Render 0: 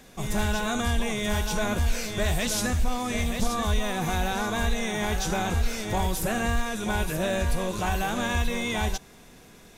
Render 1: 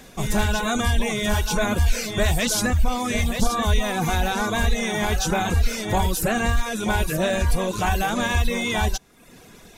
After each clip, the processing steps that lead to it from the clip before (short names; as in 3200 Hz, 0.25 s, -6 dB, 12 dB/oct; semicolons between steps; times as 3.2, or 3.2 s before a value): reverb removal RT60 0.74 s; gain +6 dB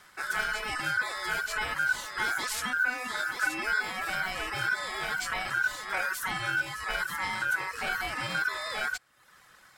ring modulator 1500 Hz; gain -7.5 dB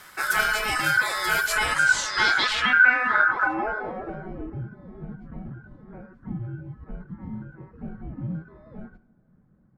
two-slope reverb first 0.51 s, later 3.8 s, from -17 dB, DRR 12 dB; low-pass sweep 14000 Hz -> 210 Hz, 1.42–4.65; gain +7.5 dB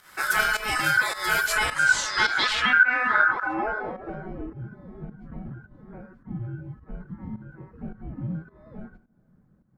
pump 106 bpm, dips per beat 1, -14 dB, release 0.199 s